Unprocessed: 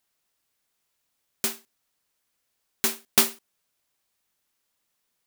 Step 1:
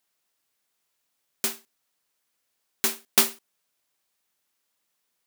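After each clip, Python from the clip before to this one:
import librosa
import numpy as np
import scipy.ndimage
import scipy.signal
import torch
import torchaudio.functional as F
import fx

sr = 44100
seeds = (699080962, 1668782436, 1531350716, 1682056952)

y = fx.low_shelf(x, sr, hz=110.0, db=-10.0)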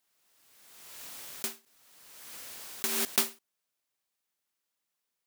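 y = fx.pre_swell(x, sr, db_per_s=33.0)
y = F.gain(torch.from_numpy(y), -8.0).numpy()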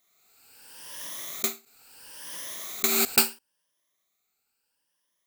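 y = fx.spec_ripple(x, sr, per_octave=1.2, drift_hz=0.74, depth_db=12)
y = F.gain(torch.from_numpy(y), 5.0).numpy()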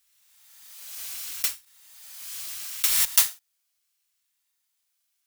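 y = fx.bit_reversed(x, sr, seeds[0], block=256)
y = fx.tone_stack(y, sr, knobs='10-0-10')
y = F.gain(torch.from_numpy(y), 2.5).numpy()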